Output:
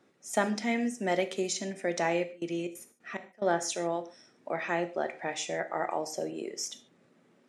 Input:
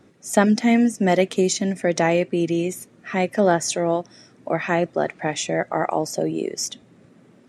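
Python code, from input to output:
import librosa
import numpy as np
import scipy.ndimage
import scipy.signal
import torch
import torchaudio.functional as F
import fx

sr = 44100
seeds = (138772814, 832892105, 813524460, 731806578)

y = fx.step_gate(x, sr, bpm=180, pattern='xx...xxx.xx.', floor_db=-24.0, edge_ms=4.5, at=(2.31, 3.48), fade=0.02)
y = fx.highpass(y, sr, hz=440.0, slope=6)
y = fx.high_shelf(y, sr, hz=11000.0, db=-6.5)
y = fx.rev_gated(y, sr, seeds[0], gate_ms=170, shape='falling', drr_db=9.0)
y = y * 10.0 ** (-8.0 / 20.0)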